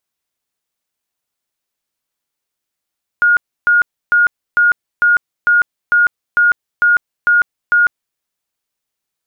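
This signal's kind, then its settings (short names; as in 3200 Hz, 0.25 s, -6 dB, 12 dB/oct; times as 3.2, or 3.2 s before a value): tone bursts 1430 Hz, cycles 213, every 0.45 s, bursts 11, -7.5 dBFS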